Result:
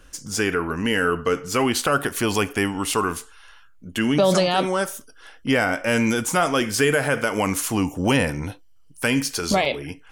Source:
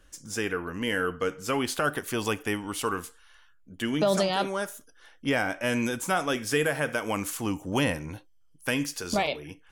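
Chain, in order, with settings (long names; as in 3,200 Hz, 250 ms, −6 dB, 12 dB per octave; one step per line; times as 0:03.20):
in parallel at −0.5 dB: brickwall limiter −22.5 dBFS, peak gain reduction 8.5 dB
on the sum: wrong playback speed 25 fps video run at 24 fps
level +3 dB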